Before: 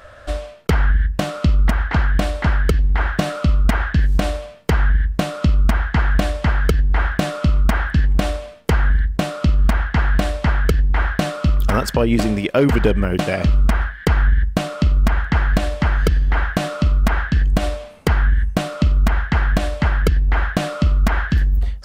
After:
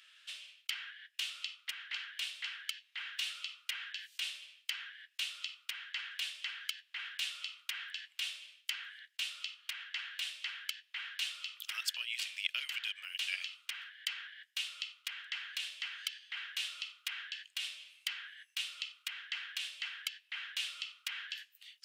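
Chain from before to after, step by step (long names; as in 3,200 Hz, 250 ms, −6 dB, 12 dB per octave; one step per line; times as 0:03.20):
four-pole ladder high-pass 2,500 Hz, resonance 55%
level −1 dB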